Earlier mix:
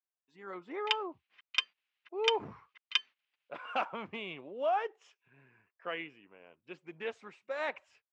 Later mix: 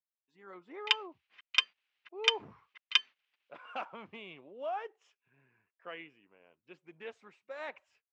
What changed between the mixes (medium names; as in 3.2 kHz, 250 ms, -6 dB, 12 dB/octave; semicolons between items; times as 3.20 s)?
speech -6.5 dB; background +3.5 dB